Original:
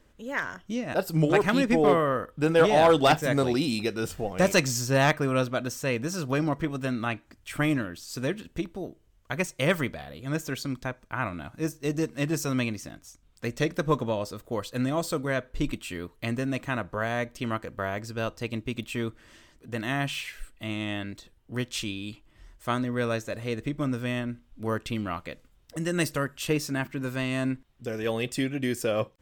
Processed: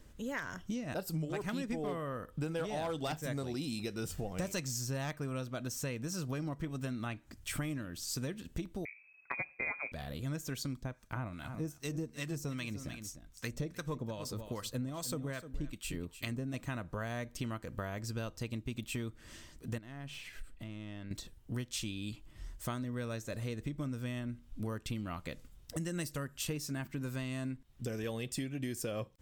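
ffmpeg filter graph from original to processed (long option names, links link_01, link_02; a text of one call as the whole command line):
ffmpeg -i in.wav -filter_complex "[0:a]asettb=1/sr,asplit=3[link_01][link_02][link_03];[link_01]atrim=end=8.854[link_04];[link_02]atrim=start=8.85:end=9.92,asetpts=PTS-STARTPTS,afade=type=in:duration=0.004:curve=qsin,afade=type=out:start_time=1.066:duration=0.004:curve=qsin,bandreject=frequency=54.98:width_type=h:width=4,bandreject=frequency=109.96:width_type=h:width=4,bandreject=frequency=164.94:width_type=h:width=4,bandreject=frequency=219.92:width_type=h:width=4,bandreject=frequency=274.9:width_type=h:width=4,lowpass=frequency=2200:width_type=q:width=0.5098,lowpass=frequency=2200:width_type=q:width=0.6013,lowpass=frequency=2200:width_type=q:width=0.9,lowpass=frequency=2200:width_type=q:width=2.563,afreqshift=-2600,lowshelf=frequency=79:gain=-7.5[link_05];[link_03]atrim=start=9.916[link_06];[link_04][link_05]acrossfade=duration=0.004:curve1=hsin:curve2=qsin[link_07];[link_07][link_06]acrossfade=duration=0.004:curve1=qsin:curve2=hsin,asettb=1/sr,asplit=3[link_08][link_09][link_10];[link_08]atrim=end=10.824[link_11];[link_09]atrim=start=10.82:end=16.54,asetpts=PTS-STARTPTS,afade=type=in:duration=0.004:curve=qsin,afade=type=out:start_time=5.716:duration=0.004:curve=qsin,acrossover=split=930[link_12][link_13];[link_12]aeval=exprs='val(0)*(1-0.7/2+0.7/2*cos(2*PI*2.5*n/s))':channel_layout=same[link_14];[link_13]aeval=exprs='val(0)*(1-0.7/2-0.7/2*cos(2*PI*2.5*n/s))':channel_layout=same[link_15];[link_14][link_15]amix=inputs=2:normalize=0,aecho=1:1:302:0.178,atrim=end_sample=252252[link_16];[link_10]atrim=start=16.536[link_17];[link_11][link_16]acrossfade=duration=0.004:curve1=hsin:curve2=qsin[link_18];[link_18][link_17]acrossfade=duration=0.004:curve1=qsin:curve2=hsin,asettb=1/sr,asplit=3[link_19][link_20][link_21];[link_19]atrim=end=19.784[link_22];[link_20]atrim=start=19.78:end=21.11,asetpts=PTS-STARTPTS,afade=type=in:duration=0.004:curve=qsin,afade=type=out:start_time=1.326:duration=0.004:curve=qsin,aeval=exprs='if(lt(val(0),0),0.708*val(0),val(0))':channel_layout=same,highshelf=frequency=4600:gain=-10.5,acompressor=threshold=-45dB:ratio=4:attack=3.2:release=140:knee=1:detection=peak[link_23];[link_21]atrim=start=21.106[link_24];[link_22][link_23]acrossfade=duration=0.004:curve1=hsin:curve2=qsin[link_25];[link_25][link_24]acrossfade=duration=0.004:curve1=qsin:curve2=hsin,bass=frequency=250:gain=7,treble=frequency=4000:gain=7,acompressor=threshold=-34dB:ratio=6,volume=-1.5dB" out.wav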